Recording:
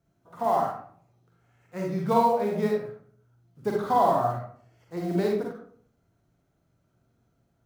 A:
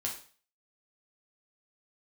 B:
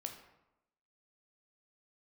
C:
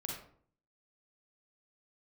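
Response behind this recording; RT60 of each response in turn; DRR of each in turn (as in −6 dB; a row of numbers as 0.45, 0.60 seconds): C; 0.40, 0.90, 0.55 seconds; −2.0, 3.5, −1.5 decibels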